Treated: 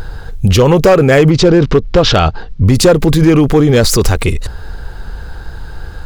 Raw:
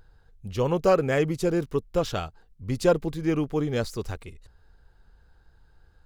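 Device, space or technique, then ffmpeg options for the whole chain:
loud club master: -filter_complex "[0:a]asettb=1/sr,asplit=3[link_01][link_02][link_03];[link_01]atrim=end=1.304[link_04];[link_02]atrim=start=1.3:end=2.65,asetpts=PTS-STARTPTS,afade=type=in:duration=0.004:curve=qsin,afade=type=out:start_time=1.346:duration=0.004:curve=qsin,lowpass=frequency=5200:width=0.5412,lowpass=frequency=5200:width=1.3066[link_05];[link_03]atrim=start=2.646[link_06];[link_04][link_05]acrossfade=duration=0.004:curve1=hsin:curve2=qsin[link_07];[link_07][link_06]acrossfade=duration=0.004:curve1=qsin:curve2=hsin,acompressor=threshold=-25dB:ratio=2.5,asoftclip=type=hard:threshold=-21.5dB,alimiter=level_in=32.5dB:limit=-1dB:release=50:level=0:latency=1,volume=-1dB"

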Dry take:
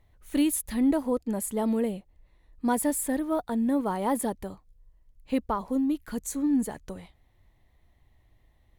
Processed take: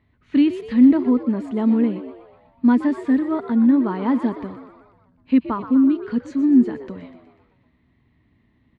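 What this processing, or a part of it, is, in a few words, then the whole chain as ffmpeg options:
frequency-shifting delay pedal into a guitar cabinet: -filter_complex "[0:a]asplit=7[link_01][link_02][link_03][link_04][link_05][link_06][link_07];[link_02]adelay=123,afreqshift=75,volume=-12dB[link_08];[link_03]adelay=246,afreqshift=150,volume=-16.7dB[link_09];[link_04]adelay=369,afreqshift=225,volume=-21.5dB[link_10];[link_05]adelay=492,afreqshift=300,volume=-26.2dB[link_11];[link_06]adelay=615,afreqshift=375,volume=-30.9dB[link_12];[link_07]adelay=738,afreqshift=450,volume=-35.7dB[link_13];[link_01][link_08][link_09][link_10][link_11][link_12][link_13]amix=inputs=7:normalize=0,highpass=94,equalizer=frequency=250:width_type=q:width=4:gain=9,equalizer=frequency=540:width_type=q:width=4:gain=-8,equalizer=frequency=770:width_type=q:width=4:gain=-9,equalizer=frequency=3400:width_type=q:width=4:gain=-5,lowpass=frequency=3800:width=0.5412,lowpass=frequency=3800:width=1.3066,volume=5dB"

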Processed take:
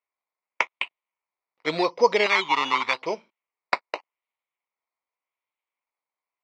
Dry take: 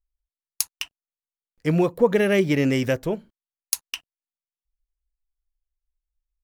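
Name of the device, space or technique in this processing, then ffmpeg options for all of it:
circuit-bent sampling toy: -filter_complex "[0:a]acrusher=samples=11:mix=1:aa=0.000001:lfo=1:lforange=6.6:lforate=0.86,highpass=550,equalizer=frequency=1000:width_type=q:width=4:gain=7,equalizer=frequency=1600:width_type=q:width=4:gain=-10,equalizer=frequency=2200:width_type=q:width=4:gain=10,lowpass=frequency=4600:width=0.5412,lowpass=frequency=4600:width=1.3066,asettb=1/sr,asplit=3[link_01][link_02][link_03];[link_01]atrim=end=2.264[link_04];[link_02]atrim=start=2.26:end=3.02,asetpts=PTS-STARTPTS,afade=type=in:duration=0.004:curve=qsin,afade=type=out:start_time=0.756:duration=0.004:curve=qsin,lowshelf=frequency=730:width_type=q:width=3:gain=-7[link_05];[link_03]atrim=start=3.016[link_06];[link_04][link_05]acrossfade=duration=0.004:curve1=hsin:curve2=qsin[link_07];[link_07][link_06]acrossfade=duration=0.004:curve1=qsin:curve2=hsin,volume=3dB"

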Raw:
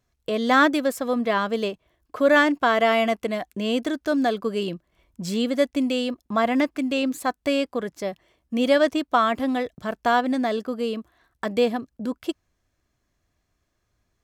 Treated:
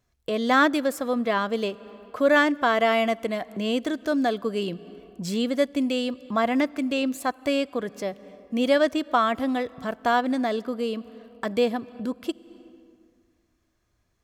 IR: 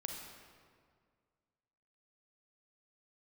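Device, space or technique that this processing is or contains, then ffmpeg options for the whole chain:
ducked reverb: -filter_complex "[0:a]asplit=3[link_01][link_02][link_03];[1:a]atrim=start_sample=2205[link_04];[link_02][link_04]afir=irnorm=-1:irlink=0[link_05];[link_03]apad=whole_len=627750[link_06];[link_05][link_06]sidechaincompress=threshold=-36dB:ratio=4:attack=6.2:release=230,volume=-7dB[link_07];[link_01][link_07]amix=inputs=2:normalize=0,volume=-2dB"

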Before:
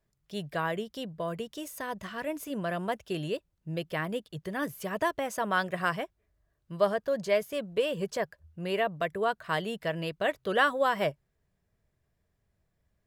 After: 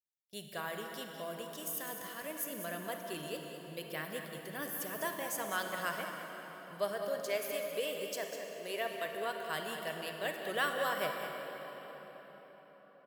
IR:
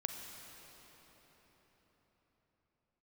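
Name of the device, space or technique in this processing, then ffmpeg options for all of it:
cave: -filter_complex "[0:a]agate=range=-24dB:threshold=-49dB:ratio=16:detection=peak,aemphasis=mode=production:type=bsi,asettb=1/sr,asplit=3[link_01][link_02][link_03];[link_01]atrim=end=7.184[link_04];[link_02]atrim=start=7.18:end=9.06,asetpts=PTS-STARTPTS,afade=type=in:duration=0.004:curve=qsin,afade=type=out:start_time=1.876:duration=0.004:curve=qsin,highpass=frequency=220:width=0.5412,highpass=frequency=220:width=1.3066[link_05];[link_03]atrim=start=9.056[link_06];[link_04][link_05]acrossfade=duration=0.004:curve1=hsin:curve2=qsin[link_07];[link_07][link_06]acrossfade=duration=0.004:curve1=qsin:curve2=hsin,equalizer=frequency=1000:width=1.5:gain=-2.5,aecho=1:1:202:0.335[link_08];[1:a]atrim=start_sample=2205[link_09];[link_08][link_09]afir=irnorm=-1:irlink=0,volume=-7dB"

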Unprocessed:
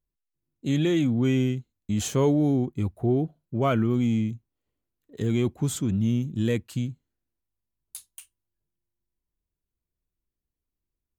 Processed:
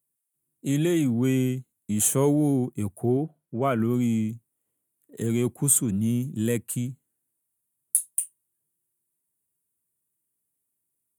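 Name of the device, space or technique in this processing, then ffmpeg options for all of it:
budget condenser microphone: -filter_complex "[0:a]highpass=frequency=110:width=0.5412,highpass=frequency=110:width=1.3066,highshelf=frequency=6900:width_type=q:width=3:gain=13,asettb=1/sr,asplit=3[link_01][link_02][link_03];[link_01]atrim=end=3.174[link_04];[link_02]atrim=start=3.17:end=3.8,asetpts=PTS-STARTPTS,afade=type=in:duration=0.004:curve=qsin,afade=type=out:start_time=0.626:duration=0.004:curve=qsin,bass=frequency=250:gain=-3,treble=frequency=4000:gain=-10[link_05];[link_03]atrim=start=3.796[link_06];[link_04][link_05]acrossfade=duration=0.004:curve1=hsin:curve2=qsin[link_07];[link_07][link_06]acrossfade=duration=0.004:curve1=qsin:curve2=hsin"

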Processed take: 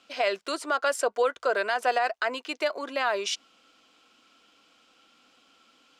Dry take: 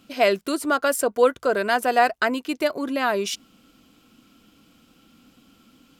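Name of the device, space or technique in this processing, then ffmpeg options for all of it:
DJ mixer with the lows and highs turned down: -filter_complex "[0:a]acrossover=split=440 7900:gain=0.0708 1 0.0708[link_01][link_02][link_03];[link_01][link_02][link_03]amix=inputs=3:normalize=0,alimiter=limit=-15dB:level=0:latency=1:release=70"

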